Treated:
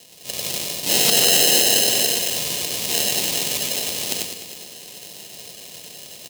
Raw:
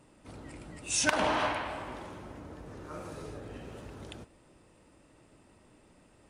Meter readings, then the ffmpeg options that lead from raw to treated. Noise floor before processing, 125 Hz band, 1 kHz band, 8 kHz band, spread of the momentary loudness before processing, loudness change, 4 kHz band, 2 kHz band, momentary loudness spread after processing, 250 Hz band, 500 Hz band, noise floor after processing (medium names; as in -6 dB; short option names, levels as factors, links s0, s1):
-62 dBFS, +7.5 dB, +2.0 dB, +19.5 dB, 20 LU, +16.0 dB, +22.5 dB, +9.0 dB, 23 LU, +8.0 dB, +10.5 dB, -41 dBFS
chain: -filter_complex "[0:a]afreqshift=-140,aecho=1:1:1.6:0.59,acrusher=samples=38:mix=1:aa=0.000001,bandreject=f=1400:w=6.2,asoftclip=type=tanh:threshold=0.0596,highpass=240,asplit=2[s0][s1];[s1]aecho=0:1:95:0.531[s2];[s0][s2]amix=inputs=2:normalize=0,aexciter=amount=5.1:drive=8.1:freq=2400,asplit=2[s3][s4];[s4]aecho=0:1:204|408|612|816|1020:0.224|0.119|0.0629|0.0333|0.0177[s5];[s3][s5]amix=inputs=2:normalize=0,dynaudnorm=f=200:g=3:m=2.37,aeval=exprs='(mod(1.33*val(0)+1,2)-1)/1.33':c=same,alimiter=level_in=2.66:limit=0.891:release=50:level=0:latency=1,volume=0.891"